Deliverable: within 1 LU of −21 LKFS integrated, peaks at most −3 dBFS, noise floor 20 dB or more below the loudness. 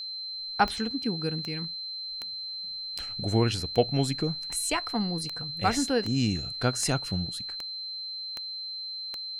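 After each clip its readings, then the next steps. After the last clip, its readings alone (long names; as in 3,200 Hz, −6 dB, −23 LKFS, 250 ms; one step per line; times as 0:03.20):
number of clicks 12; interfering tone 4,100 Hz; level of the tone −34 dBFS; integrated loudness −29.5 LKFS; sample peak −9.5 dBFS; target loudness −21.0 LKFS
→ click removal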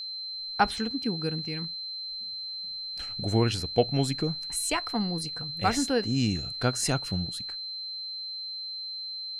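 number of clicks 0; interfering tone 4,100 Hz; level of the tone −34 dBFS
→ notch filter 4,100 Hz, Q 30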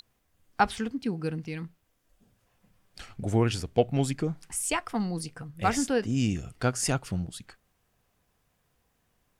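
interfering tone none found; integrated loudness −29.5 LKFS; sample peak −9.0 dBFS; target loudness −21.0 LKFS
→ level +8.5 dB
brickwall limiter −3 dBFS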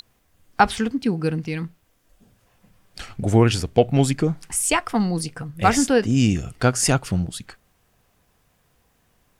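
integrated loudness −21.0 LKFS; sample peak −3.0 dBFS; background noise floor −65 dBFS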